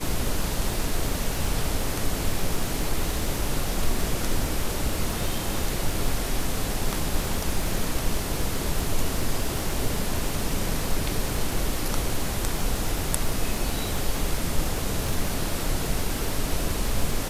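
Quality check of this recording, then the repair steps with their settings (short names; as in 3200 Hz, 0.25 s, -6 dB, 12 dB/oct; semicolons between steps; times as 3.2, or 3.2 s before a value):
crackle 43/s -28 dBFS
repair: de-click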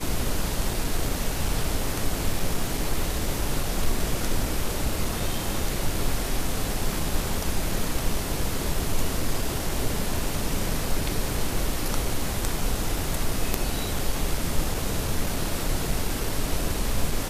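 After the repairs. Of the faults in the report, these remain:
none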